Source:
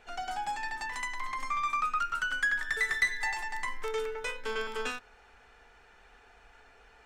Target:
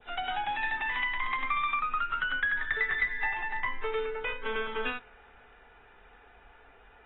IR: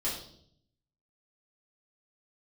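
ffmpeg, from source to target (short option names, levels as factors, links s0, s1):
-filter_complex "[0:a]asetnsamples=n=441:p=0,asendcmd='1.79 equalizer g -5.5',equalizer=f=7400:w=0.32:g=6.5,acrossover=split=130[s0][s1];[s1]acompressor=threshold=0.0316:ratio=6[s2];[s0][s2]amix=inputs=2:normalize=0,adynamicequalizer=threshold=0.00447:dfrequency=2300:dqfactor=1.1:tfrequency=2300:tqfactor=1.1:attack=5:release=100:ratio=0.375:range=2:mode=boostabove:tftype=bell,volume=1.26" -ar 22050 -c:a aac -b:a 16k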